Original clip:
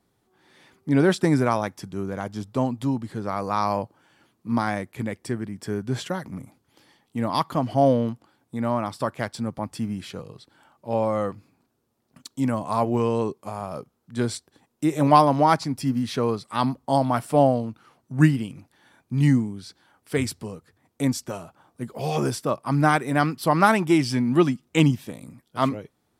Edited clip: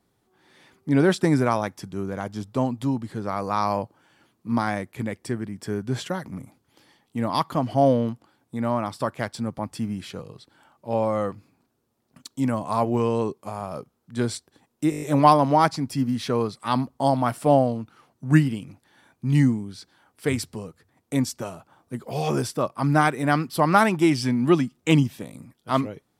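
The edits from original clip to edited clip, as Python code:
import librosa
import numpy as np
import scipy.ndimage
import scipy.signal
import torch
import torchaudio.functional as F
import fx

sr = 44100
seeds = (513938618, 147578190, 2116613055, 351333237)

y = fx.edit(x, sr, fx.stutter(start_s=14.9, slice_s=0.02, count=7), tone=tone)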